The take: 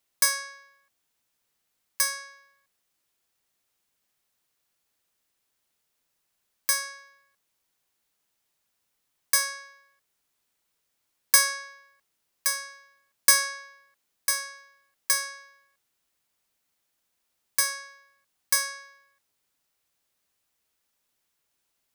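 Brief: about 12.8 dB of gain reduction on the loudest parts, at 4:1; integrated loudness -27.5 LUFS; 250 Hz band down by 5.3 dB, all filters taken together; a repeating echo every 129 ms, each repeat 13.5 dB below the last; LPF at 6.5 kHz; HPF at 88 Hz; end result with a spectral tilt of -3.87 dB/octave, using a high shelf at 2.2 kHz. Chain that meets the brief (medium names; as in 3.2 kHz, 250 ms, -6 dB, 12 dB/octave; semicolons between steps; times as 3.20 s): high-pass 88 Hz; low-pass 6.5 kHz; peaking EQ 250 Hz -7.5 dB; treble shelf 2.2 kHz -3 dB; compression 4:1, threshold -35 dBFS; feedback delay 129 ms, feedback 21%, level -13.5 dB; trim +13 dB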